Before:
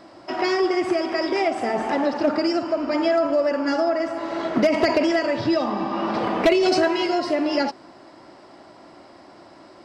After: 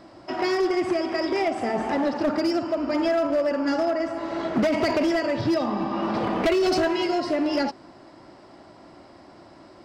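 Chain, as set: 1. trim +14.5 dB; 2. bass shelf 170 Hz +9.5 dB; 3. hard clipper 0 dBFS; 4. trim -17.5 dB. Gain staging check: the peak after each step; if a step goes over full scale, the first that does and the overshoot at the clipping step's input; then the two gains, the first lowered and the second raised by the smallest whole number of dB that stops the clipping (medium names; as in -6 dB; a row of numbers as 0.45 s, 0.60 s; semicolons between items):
+3.5 dBFS, +8.0 dBFS, 0.0 dBFS, -17.5 dBFS; step 1, 8.0 dB; step 1 +6.5 dB, step 4 -9.5 dB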